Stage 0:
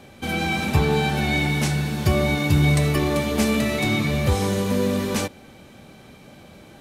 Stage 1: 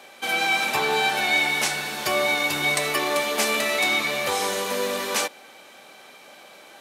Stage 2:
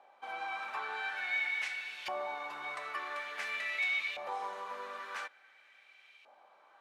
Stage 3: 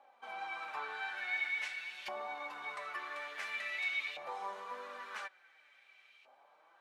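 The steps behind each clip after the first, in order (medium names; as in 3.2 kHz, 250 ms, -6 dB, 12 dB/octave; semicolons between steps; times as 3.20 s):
high-pass 660 Hz 12 dB/octave; trim +4.5 dB
LFO band-pass saw up 0.48 Hz 810–2700 Hz; trim -8 dB
flange 0.41 Hz, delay 3.5 ms, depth 5 ms, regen +38%; trim +1 dB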